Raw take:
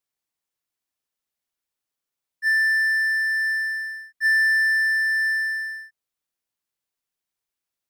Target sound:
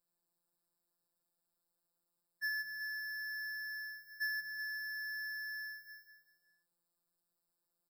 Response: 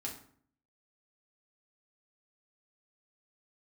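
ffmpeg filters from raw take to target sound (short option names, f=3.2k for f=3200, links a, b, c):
-af "equalizer=f=2.5k:t=o:w=2.5:g=-11,acompressor=threshold=-37dB:ratio=12,aecho=1:1:189|378|567|756:0.501|0.185|0.0686|0.0254,afftfilt=real='hypot(re,im)*cos(PI*b)':imag='0':win_size=1024:overlap=0.75,afftfilt=real='re*eq(mod(floor(b*sr/1024/1800),2),0)':imag='im*eq(mod(floor(b*sr/1024/1800),2),0)':win_size=1024:overlap=0.75,volume=8dB"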